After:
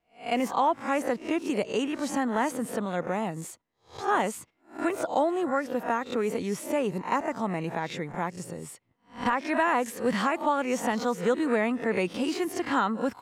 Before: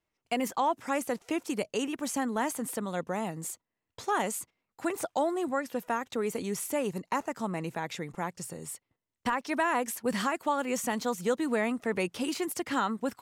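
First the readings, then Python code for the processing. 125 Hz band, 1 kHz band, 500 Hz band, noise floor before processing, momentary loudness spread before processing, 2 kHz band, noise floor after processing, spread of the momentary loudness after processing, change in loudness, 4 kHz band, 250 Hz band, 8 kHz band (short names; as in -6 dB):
+3.5 dB, +4.0 dB, +4.0 dB, under -85 dBFS, 8 LU, +3.5 dB, -69 dBFS, 8 LU, +3.5 dB, +1.5 dB, +3.5 dB, -3.5 dB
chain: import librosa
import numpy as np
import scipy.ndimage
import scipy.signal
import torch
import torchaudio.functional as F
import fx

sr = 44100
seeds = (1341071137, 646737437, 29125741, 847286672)

y = fx.spec_swells(x, sr, rise_s=0.32)
y = fx.lowpass(y, sr, hz=3000.0, slope=6)
y = y * 10.0 ** (3.0 / 20.0)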